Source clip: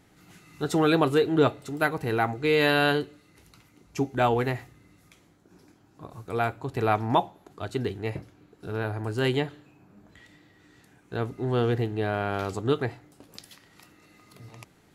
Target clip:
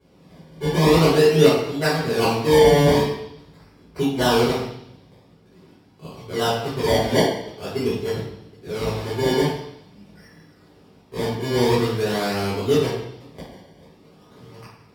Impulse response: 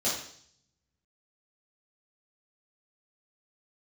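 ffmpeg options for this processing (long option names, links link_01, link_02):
-filter_complex "[0:a]acrusher=samples=23:mix=1:aa=0.000001:lfo=1:lforange=23:lforate=0.46[link_01];[1:a]atrim=start_sample=2205,asetrate=33957,aresample=44100[link_02];[link_01][link_02]afir=irnorm=-1:irlink=0,volume=-7dB"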